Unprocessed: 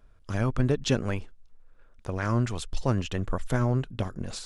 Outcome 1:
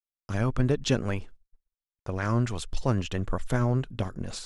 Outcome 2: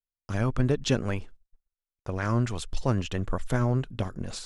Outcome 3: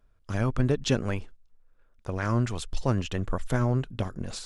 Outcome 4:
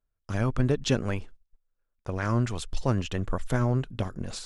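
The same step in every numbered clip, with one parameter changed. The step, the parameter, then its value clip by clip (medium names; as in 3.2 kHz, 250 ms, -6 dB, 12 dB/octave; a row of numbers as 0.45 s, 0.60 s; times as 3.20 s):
gate, range: -58 dB, -44 dB, -7 dB, -24 dB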